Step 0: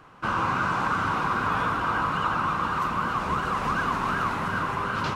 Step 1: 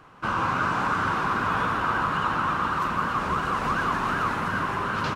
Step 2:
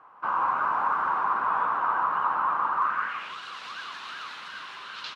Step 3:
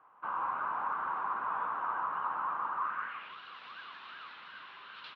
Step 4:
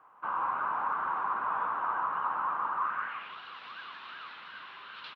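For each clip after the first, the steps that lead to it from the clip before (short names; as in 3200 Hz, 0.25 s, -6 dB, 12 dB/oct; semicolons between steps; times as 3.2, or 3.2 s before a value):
frequency-shifting echo 0.169 s, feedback 54%, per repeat +99 Hz, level -9.5 dB
band-pass sweep 960 Hz -> 3800 Hz, 2.76–3.38; gain +3 dB
LPF 3700 Hz 24 dB/oct; gain -9 dB
frequency-shifting echo 0.294 s, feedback 34%, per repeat -150 Hz, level -22 dB; gain +3 dB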